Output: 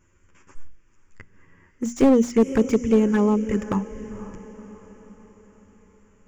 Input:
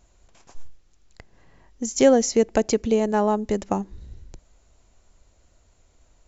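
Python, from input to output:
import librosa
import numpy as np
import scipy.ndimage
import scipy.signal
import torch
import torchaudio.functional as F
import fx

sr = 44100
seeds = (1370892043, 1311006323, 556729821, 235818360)

p1 = fx.high_shelf(x, sr, hz=5100.0, db=-8.0)
p2 = fx.hum_notches(p1, sr, base_hz=60, count=4)
p3 = fx.env_flanger(p2, sr, rest_ms=11.7, full_db=-16.0)
p4 = fx.low_shelf(p3, sr, hz=90.0, db=-8.0)
p5 = fx.fixed_phaser(p4, sr, hz=1700.0, stages=4)
p6 = p5 + fx.echo_diffused(p5, sr, ms=517, feedback_pct=50, wet_db=-15, dry=0)
p7 = fx.slew_limit(p6, sr, full_power_hz=37.0)
y = F.gain(torch.from_numpy(p7), 8.5).numpy()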